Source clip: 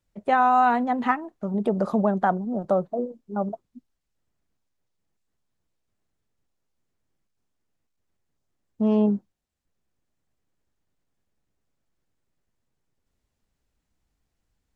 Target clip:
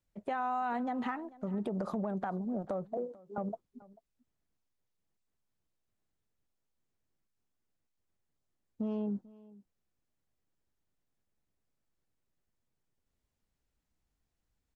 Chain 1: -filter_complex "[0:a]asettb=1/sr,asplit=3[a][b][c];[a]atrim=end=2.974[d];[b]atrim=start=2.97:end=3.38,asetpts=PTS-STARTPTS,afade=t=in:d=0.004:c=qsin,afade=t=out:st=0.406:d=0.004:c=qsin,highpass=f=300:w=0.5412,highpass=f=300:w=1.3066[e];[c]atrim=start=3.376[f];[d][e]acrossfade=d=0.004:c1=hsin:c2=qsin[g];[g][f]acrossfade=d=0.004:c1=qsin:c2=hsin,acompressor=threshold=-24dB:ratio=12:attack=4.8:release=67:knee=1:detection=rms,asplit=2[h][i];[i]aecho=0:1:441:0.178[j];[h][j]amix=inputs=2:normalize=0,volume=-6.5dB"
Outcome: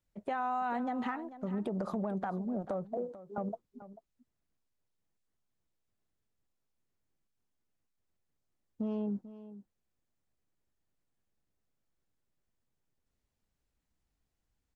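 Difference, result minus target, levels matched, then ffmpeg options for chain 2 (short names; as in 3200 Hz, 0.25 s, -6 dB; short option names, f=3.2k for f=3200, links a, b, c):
echo-to-direct +6.5 dB
-filter_complex "[0:a]asettb=1/sr,asplit=3[a][b][c];[a]atrim=end=2.974[d];[b]atrim=start=2.97:end=3.38,asetpts=PTS-STARTPTS,afade=t=in:d=0.004:c=qsin,afade=t=out:st=0.406:d=0.004:c=qsin,highpass=f=300:w=0.5412,highpass=f=300:w=1.3066[e];[c]atrim=start=3.376[f];[d][e]acrossfade=d=0.004:c1=hsin:c2=qsin[g];[g][f]acrossfade=d=0.004:c1=qsin:c2=hsin,acompressor=threshold=-24dB:ratio=12:attack=4.8:release=67:knee=1:detection=rms,asplit=2[h][i];[i]aecho=0:1:441:0.0841[j];[h][j]amix=inputs=2:normalize=0,volume=-6.5dB"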